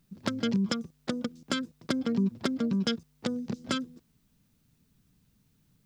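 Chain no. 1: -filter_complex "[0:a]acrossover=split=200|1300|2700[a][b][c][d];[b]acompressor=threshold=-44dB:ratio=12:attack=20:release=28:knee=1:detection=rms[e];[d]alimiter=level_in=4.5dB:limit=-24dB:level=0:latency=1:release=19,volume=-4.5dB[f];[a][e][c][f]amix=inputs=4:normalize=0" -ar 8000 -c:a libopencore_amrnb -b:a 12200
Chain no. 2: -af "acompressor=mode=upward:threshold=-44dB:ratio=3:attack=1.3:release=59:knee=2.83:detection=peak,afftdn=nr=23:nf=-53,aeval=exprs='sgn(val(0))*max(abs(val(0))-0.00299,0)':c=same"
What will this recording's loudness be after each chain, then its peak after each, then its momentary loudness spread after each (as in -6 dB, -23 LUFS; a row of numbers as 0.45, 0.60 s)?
-37.5, -32.0 LUFS; -21.5, -13.5 dBFS; 8, 7 LU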